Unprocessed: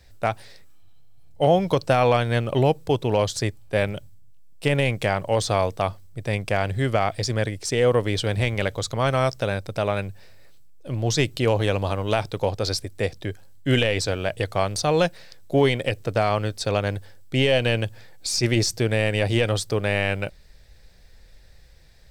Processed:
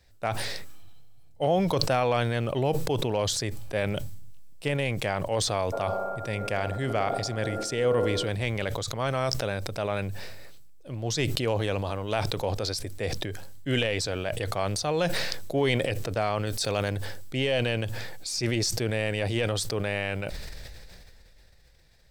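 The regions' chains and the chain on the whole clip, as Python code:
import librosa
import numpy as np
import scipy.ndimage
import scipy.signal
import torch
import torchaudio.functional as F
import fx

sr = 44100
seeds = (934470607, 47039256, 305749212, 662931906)

y = fx.dmg_tone(x, sr, hz=1400.0, level_db=-39.0, at=(5.72, 8.28), fade=0.02)
y = fx.echo_wet_bandpass(y, sr, ms=61, feedback_pct=80, hz=430.0, wet_db=-10.0, at=(5.72, 8.28), fade=0.02)
y = fx.chain(y, sr, fx.high_shelf(hz=5000.0, db=8.5),
    fx.env_flatten(amount_pct=50), at=(16.47, 16.9))
y = fx.low_shelf(y, sr, hz=130.0, db=-3.5)
y = fx.sustainer(y, sr, db_per_s=21.0)
y = y * librosa.db_to_amplitude(-6.5)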